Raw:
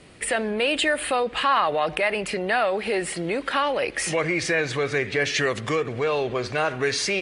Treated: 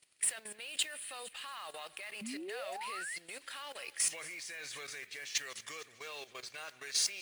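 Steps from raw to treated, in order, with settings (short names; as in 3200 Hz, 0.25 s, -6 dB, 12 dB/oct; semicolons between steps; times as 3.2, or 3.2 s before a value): pre-emphasis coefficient 0.97; thinning echo 0.23 s, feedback 70%, high-pass 1100 Hz, level -16 dB; level quantiser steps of 15 dB; modulation noise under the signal 18 dB; painted sound rise, 2.21–3.18, 200–2200 Hz -43 dBFS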